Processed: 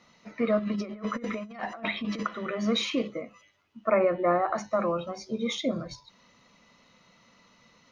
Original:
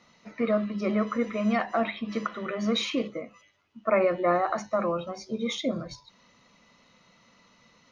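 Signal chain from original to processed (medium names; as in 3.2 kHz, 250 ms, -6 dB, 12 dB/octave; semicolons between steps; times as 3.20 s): 0.59–2.23 s: compressor with a negative ratio -32 dBFS, ratio -0.5; 3.94–4.55 s: Bessel low-pass 2.1 kHz, order 2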